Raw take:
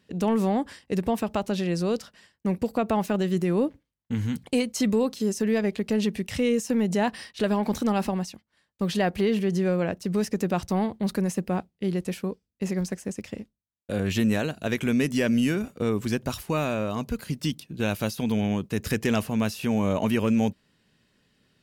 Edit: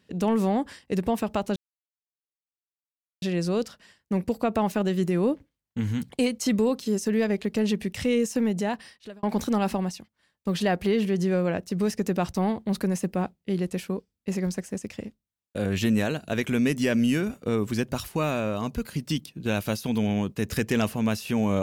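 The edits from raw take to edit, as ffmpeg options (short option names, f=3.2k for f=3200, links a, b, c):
-filter_complex "[0:a]asplit=3[a][b][c];[a]atrim=end=1.56,asetpts=PTS-STARTPTS,afade=t=out:st=1.556:d=0.004:c=hsin,apad=pad_dur=1.66[d];[b]atrim=start=1.56:end=7.57,asetpts=PTS-STARTPTS,afade=t=in:d=0.004:c=hsin,afade=t=out:st=5.17:d=0.84[e];[c]atrim=start=7.57,asetpts=PTS-STARTPTS,afade=t=in:d=0.004:c=hsin[f];[d][e][f]concat=n=3:v=0:a=1"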